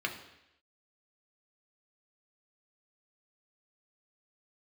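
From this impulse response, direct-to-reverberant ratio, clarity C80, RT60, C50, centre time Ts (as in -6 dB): 1.5 dB, 12.0 dB, 0.85 s, 9.0 dB, 21 ms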